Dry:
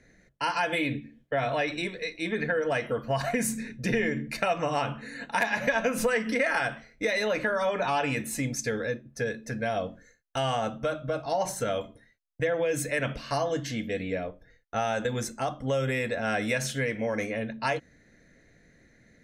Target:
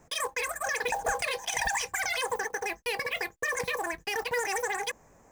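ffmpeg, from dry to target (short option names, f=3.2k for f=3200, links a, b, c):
-af "lowshelf=f=320:g=10,asetrate=159642,aresample=44100,acrusher=bits=5:mode=log:mix=0:aa=0.000001,volume=-6dB"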